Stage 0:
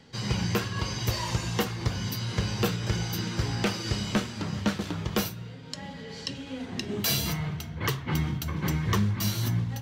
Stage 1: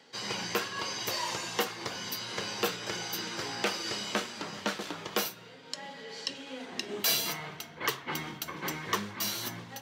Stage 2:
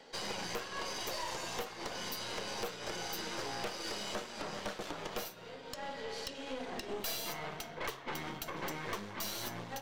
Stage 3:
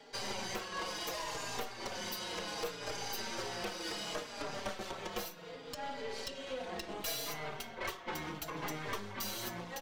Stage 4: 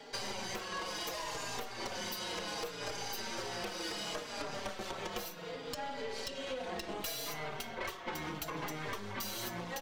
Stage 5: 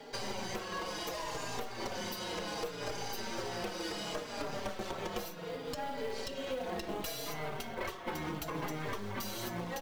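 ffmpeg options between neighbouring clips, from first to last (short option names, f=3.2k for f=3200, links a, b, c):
-af "highpass=400"
-af "equalizer=f=610:w=1.1:g=7.5,acompressor=threshold=-37dB:ratio=3,aeval=exprs='(tanh(63.1*val(0)+0.75)-tanh(0.75))/63.1':c=same,volume=3.5dB"
-filter_complex "[0:a]asplit=2[a][b];[b]adelay=4.5,afreqshift=-0.68[c];[a][c]amix=inputs=2:normalize=1,volume=3dB"
-af "acompressor=threshold=-41dB:ratio=6,volume=5dB"
-af "tiltshelf=f=970:g=3,acrusher=bits=6:mode=log:mix=0:aa=0.000001,volume=1dB" -ar 48000 -c:a libvorbis -b:a 192k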